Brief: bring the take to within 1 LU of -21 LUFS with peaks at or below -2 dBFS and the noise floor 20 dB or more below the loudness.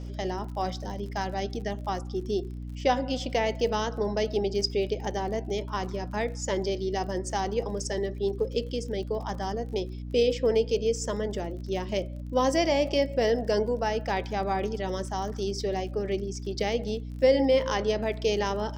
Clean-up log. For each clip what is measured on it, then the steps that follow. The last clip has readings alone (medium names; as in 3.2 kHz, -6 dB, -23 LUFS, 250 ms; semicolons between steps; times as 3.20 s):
tick rate 43 per s; hum 60 Hz; highest harmonic 300 Hz; hum level -34 dBFS; loudness -28.5 LUFS; peak level -11.0 dBFS; loudness target -21.0 LUFS
-> de-click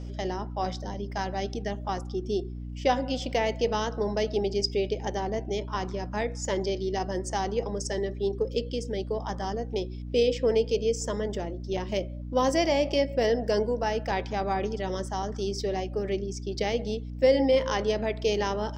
tick rate 0.053 per s; hum 60 Hz; highest harmonic 300 Hz; hum level -34 dBFS
-> de-hum 60 Hz, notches 5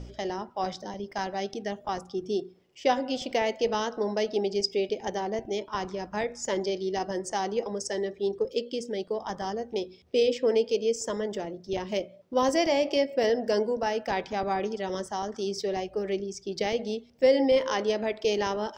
hum not found; loudness -29.0 LUFS; peak level -11.0 dBFS; loudness target -21.0 LUFS
-> trim +8 dB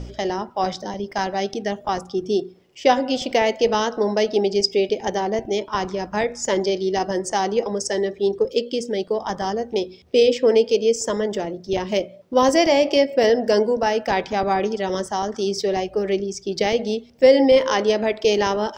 loudness -21.0 LUFS; peak level -3.0 dBFS; noise floor -46 dBFS